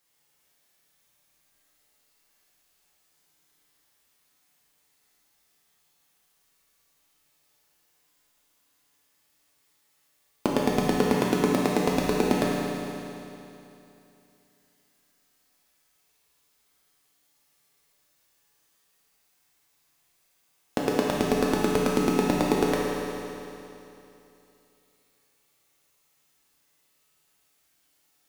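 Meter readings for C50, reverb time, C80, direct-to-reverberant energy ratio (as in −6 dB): −2.0 dB, 2.9 s, −0.5 dB, −5.0 dB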